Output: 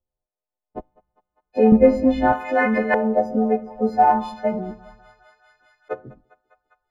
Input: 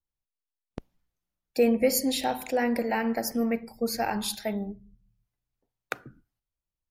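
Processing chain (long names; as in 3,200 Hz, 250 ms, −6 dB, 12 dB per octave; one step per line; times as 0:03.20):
every partial snapped to a pitch grid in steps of 3 semitones
0:01.72–0:02.33: RIAA equalisation playback
feedback echo with a high-pass in the loop 201 ms, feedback 79%, high-pass 550 Hz, level −21 dB
auto-filter low-pass saw up 0.34 Hz 570–1,600 Hz
phase shifter 1.8 Hz, delay 3.5 ms, feedback 30%
level +5.5 dB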